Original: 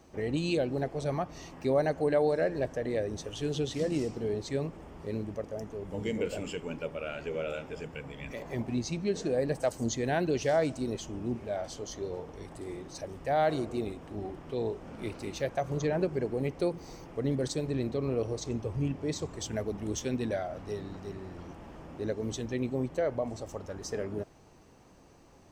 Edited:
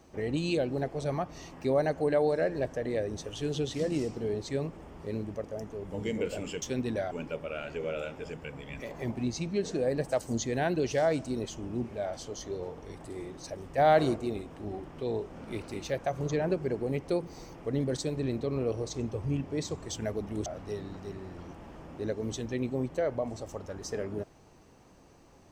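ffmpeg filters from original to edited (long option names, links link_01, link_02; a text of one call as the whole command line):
ffmpeg -i in.wav -filter_complex "[0:a]asplit=6[link_01][link_02][link_03][link_04][link_05][link_06];[link_01]atrim=end=6.622[link_07];[link_02]atrim=start=19.968:end=20.462[link_08];[link_03]atrim=start=6.618:end=13.292[link_09];[link_04]atrim=start=13.288:end=13.672,asetpts=PTS-STARTPTS,volume=4.5dB[link_10];[link_05]atrim=start=13.668:end=19.972[link_11];[link_06]atrim=start=20.458[link_12];[link_07][link_08]acrossfade=duration=0.004:curve1=hsin:curve2=hsin[link_13];[link_13][link_09]acrossfade=duration=0.004:curve1=hsin:curve2=hsin[link_14];[link_14][link_10]acrossfade=duration=0.004:curve1=hsin:curve2=hsin[link_15];[link_15][link_11]acrossfade=duration=0.004:curve1=hsin:curve2=hsin[link_16];[link_16][link_12]acrossfade=duration=0.004:curve1=hsin:curve2=hsin" out.wav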